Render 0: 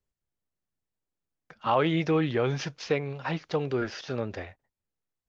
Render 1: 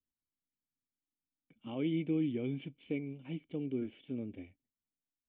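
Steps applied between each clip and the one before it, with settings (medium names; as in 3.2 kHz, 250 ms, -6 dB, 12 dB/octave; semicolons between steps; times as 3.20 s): cascade formant filter i; dynamic bell 630 Hz, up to +4 dB, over -50 dBFS, Q 0.73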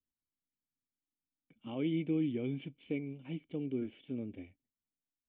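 no audible change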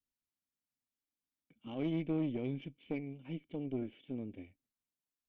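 valve stage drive 27 dB, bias 0.6; trim +1 dB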